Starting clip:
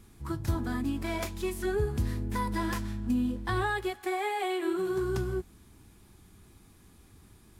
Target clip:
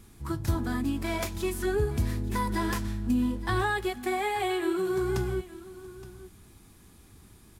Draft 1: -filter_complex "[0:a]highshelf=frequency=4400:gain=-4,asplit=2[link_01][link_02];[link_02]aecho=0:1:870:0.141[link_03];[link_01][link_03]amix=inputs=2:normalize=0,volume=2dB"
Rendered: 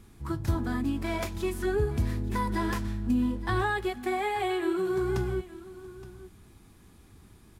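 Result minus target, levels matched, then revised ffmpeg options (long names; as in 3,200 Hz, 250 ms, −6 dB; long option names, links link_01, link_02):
8,000 Hz band −5.0 dB
-filter_complex "[0:a]highshelf=frequency=4400:gain=2.5,asplit=2[link_01][link_02];[link_02]aecho=0:1:870:0.141[link_03];[link_01][link_03]amix=inputs=2:normalize=0,volume=2dB"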